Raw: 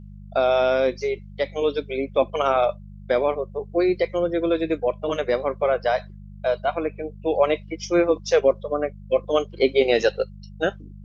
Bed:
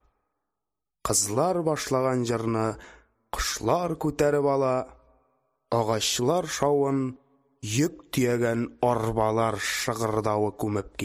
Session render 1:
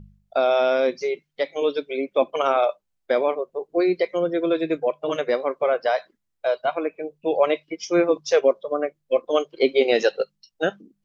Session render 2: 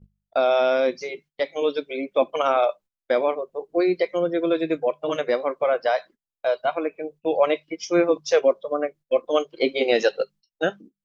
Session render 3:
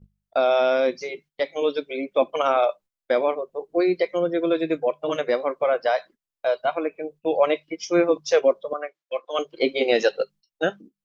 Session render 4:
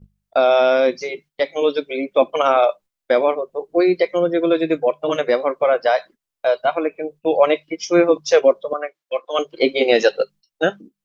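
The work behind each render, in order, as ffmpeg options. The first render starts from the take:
ffmpeg -i in.wav -af "bandreject=frequency=50:width_type=h:width=4,bandreject=frequency=100:width_type=h:width=4,bandreject=frequency=150:width_type=h:width=4,bandreject=frequency=200:width_type=h:width=4" out.wav
ffmpeg -i in.wav -af "agate=range=-17dB:threshold=-43dB:ratio=16:detection=peak,bandreject=frequency=410:width=12" out.wav
ffmpeg -i in.wav -filter_complex "[0:a]asettb=1/sr,asplit=3[link_01][link_02][link_03];[link_01]atrim=end=8.734[link_04];[link_02]atrim=start=8.73:end=9.39,asetpts=PTS-STARTPTS,afade=type=in:duration=0.004:curve=qsin,afade=type=out:start_time=0.656:duration=0.004:curve=qsin,highpass=790,lowpass=5700[link_05];[link_03]atrim=start=9.386[link_06];[link_04][link_05]acrossfade=duration=0.004:curve1=hsin:curve2=qsin[link_07];[link_07][link_06]acrossfade=duration=0.004:curve1=qsin:curve2=hsin" out.wav
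ffmpeg -i in.wav -af "volume=5dB" out.wav

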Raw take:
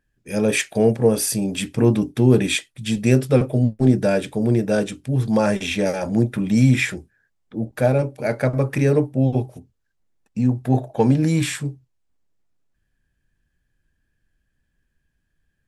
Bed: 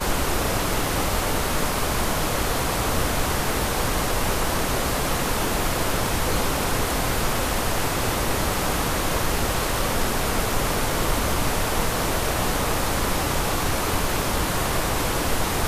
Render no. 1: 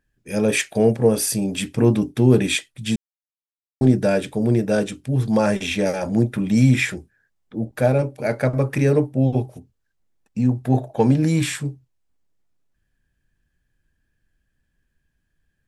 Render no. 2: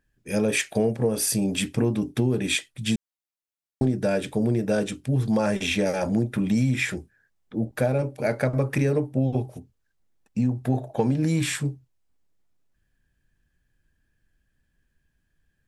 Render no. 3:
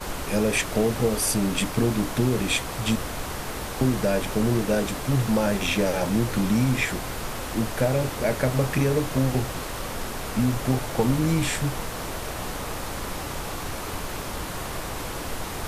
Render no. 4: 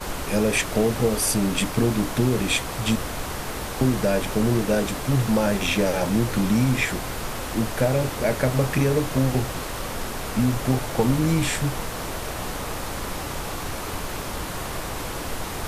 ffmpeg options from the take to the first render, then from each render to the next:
ffmpeg -i in.wav -filter_complex "[0:a]asplit=3[link_01][link_02][link_03];[link_01]atrim=end=2.96,asetpts=PTS-STARTPTS,afade=type=out:start_time=2.956:duration=0.004:curve=hsin[link_04];[link_02]atrim=start=2.96:end=3.81,asetpts=PTS-STARTPTS,volume=0[link_05];[link_03]atrim=start=3.81,asetpts=PTS-STARTPTS,afade=type=in:duration=0.004:curve=hsin[link_06];[link_04][link_05][link_06]concat=n=3:v=0:a=1" out.wav
ffmpeg -i in.wav -af "acompressor=threshold=-19dB:ratio=6" out.wav
ffmpeg -i in.wav -i bed.wav -filter_complex "[1:a]volume=-8.5dB[link_01];[0:a][link_01]amix=inputs=2:normalize=0" out.wav
ffmpeg -i in.wav -af "volume=1.5dB" out.wav

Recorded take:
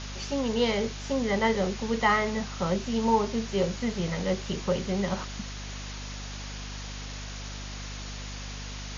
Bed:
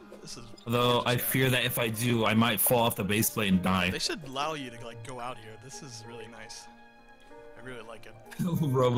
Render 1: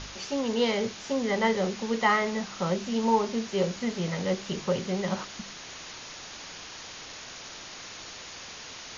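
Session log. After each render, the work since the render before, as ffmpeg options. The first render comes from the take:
ffmpeg -i in.wav -af "bandreject=frequency=50:width_type=h:width=4,bandreject=frequency=100:width_type=h:width=4,bandreject=frequency=150:width_type=h:width=4,bandreject=frequency=200:width_type=h:width=4,bandreject=frequency=250:width_type=h:width=4" out.wav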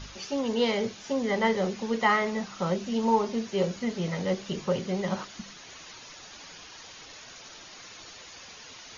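ffmpeg -i in.wav -af "afftdn=noise_reduction=8:noise_floor=-43" out.wav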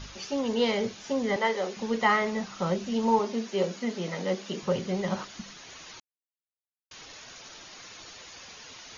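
ffmpeg -i in.wav -filter_complex "[0:a]asettb=1/sr,asplit=3[link_01][link_02][link_03];[link_01]atrim=end=1.364[link_04];[link_02]atrim=start=1.36:end=1.77,asetpts=PTS-STARTPTS,afade=type=in:duration=0.004:curve=qsin,afade=type=out:start_time=0.406:duration=0.004:curve=qsin,highpass=400[link_05];[link_03]atrim=start=1.766[link_06];[link_04][link_05]acrossfade=duration=0.004:curve1=hsin:curve2=qsin[link_07];[link_07][link_06]acrossfade=duration=0.004:curve1=qsin:curve2=hsin,asettb=1/sr,asplit=3[link_08][link_09][link_10];[link_08]atrim=end=3.194[link_11];[link_09]atrim=start=3.19:end=4.63,asetpts=PTS-STARTPTS,afade=type=in:duration=0.004:curve=qsin,afade=type=out:start_time=1.436:duration=0.004:curve=qsin,highpass=frequency=190:width=0.5412,highpass=frequency=190:width=1.3066[link_12];[link_10]atrim=start=4.626[link_13];[link_11][link_12]acrossfade=duration=0.004:curve1=hsin:curve2=qsin[link_14];[link_14][link_13]acrossfade=duration=0.004:curve1=qsin:curve2=hsin,asplit=3[link_15][link_16][link_17];[link_15]atrim=end=6,asetpts=PTS-STARTPTS,afade=type=out:start_time=5.996:duration=0.004:curve=hsin[link_18];[link_16]atrim=start=6:end=6.91,asetpts=PTS-STARTPTS,volume=0[link_19];[link_17]atrim=start=6.91,asetpts=PTS-STARTPTS,afade=type=in:duration=0.004:curve=hsin[link_20];[link_18][link_19][link_20]concat=n=3:v=0:a=1" out.wav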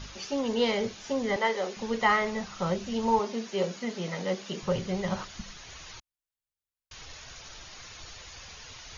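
ffmpeg -i in.wav -af "asubboost=boost=7:cutoff=91" out.wav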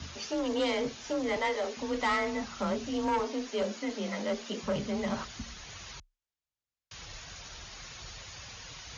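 ffmpeg -i in.wav -af "aresample=16000,asoftclip=type=tanh:threshold=-24dB,aresample=44100,afreqshift=31" out.wav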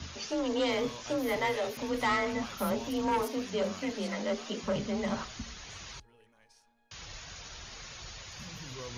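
ffmpeg -i in.wav -i bed.wav -filter_complex "[1:a]volume=-19.5dB[link_01];[0:a][link_01]amix=inputs=2:normalize=0" out.wav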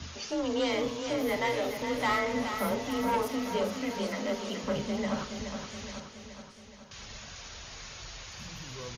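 ffmpeg -i in.wav -filter_complex "[0:a]asplit=2[link_01][link_02];[link_02]adelay=48,volume=-12dB[link_03];[link_01][link_03]amix=inputs=2:normalize=0,aecho=1:1:422|844|1266|1688|2110|2532|2954:0.398|0.231|0.134|0.0777|0.0451|0.0261|0.0152" out.wav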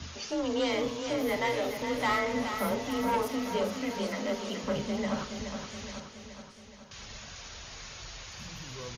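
ffmpeg -i in.wav -af anull out.wav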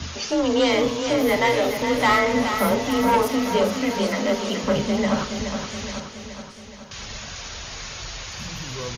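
ffmpeg -i in.wav -af "volume=10dB" out.wav

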